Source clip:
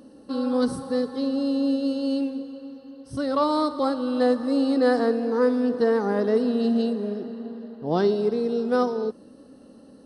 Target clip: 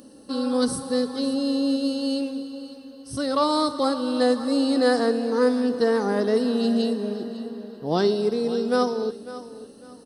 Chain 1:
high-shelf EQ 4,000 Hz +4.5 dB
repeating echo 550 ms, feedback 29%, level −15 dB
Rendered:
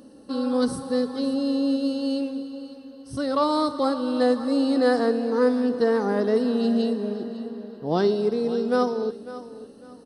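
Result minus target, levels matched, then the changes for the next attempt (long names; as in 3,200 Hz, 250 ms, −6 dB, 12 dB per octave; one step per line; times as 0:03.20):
8,000 Hz band −7.0 dB
change: high-shelf EQ 4,000 Hz +13.5 dB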